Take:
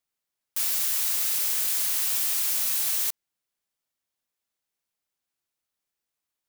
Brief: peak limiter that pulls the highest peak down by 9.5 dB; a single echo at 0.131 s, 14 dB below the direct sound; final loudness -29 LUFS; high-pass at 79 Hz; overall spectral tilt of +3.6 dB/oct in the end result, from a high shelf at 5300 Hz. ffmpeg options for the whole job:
-af "highpass=79,highshelf=f=5.3k:g=4,alimiter=limit=-17.5dB:level=0:latency=1,aecho=1:1:131:0.2,volume=-4.5dB"

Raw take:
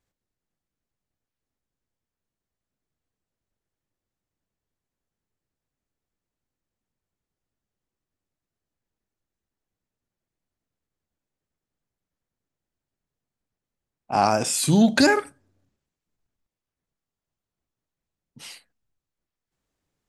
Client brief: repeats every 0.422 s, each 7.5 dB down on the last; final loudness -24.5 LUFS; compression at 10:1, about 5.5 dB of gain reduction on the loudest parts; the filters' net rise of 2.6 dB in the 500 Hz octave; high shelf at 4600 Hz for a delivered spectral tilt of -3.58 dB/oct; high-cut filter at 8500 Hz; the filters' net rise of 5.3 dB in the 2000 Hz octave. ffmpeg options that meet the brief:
-af "lowpass=8.5k,equalizer=f=500:t=o:g=3,equalizer=f=2k:t=o:g=6.5,highshelf=f=4.6k:g=3.5,acompressor=threshold=-16dB:ratio=10,aecho=1:1:422|844|1266|1688|2110:0.422|0.177|0.0744|0.0312|0.0131,volume=-1.5dB"

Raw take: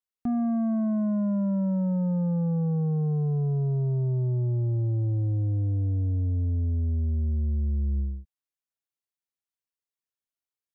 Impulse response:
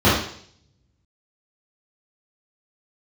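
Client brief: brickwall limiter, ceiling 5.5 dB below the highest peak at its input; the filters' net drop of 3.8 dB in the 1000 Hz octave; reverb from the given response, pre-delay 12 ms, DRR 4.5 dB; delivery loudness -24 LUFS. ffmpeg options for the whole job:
-filter_complex "[0:a]equalizer=f=1k:t=o:g=-6,alimiter=level_in=5dB:limit=-24dB:level=0:latency=1,volume=-5dB,asplit=2[a][b];[1:a]atrim=start_sample=2205,adelay=12[c];[b][c]afir=irnorm=-1:irlink=0,volume=-28dB[d];[a][d]amix=inputs=2:normalize=0,volume=1.5dB"

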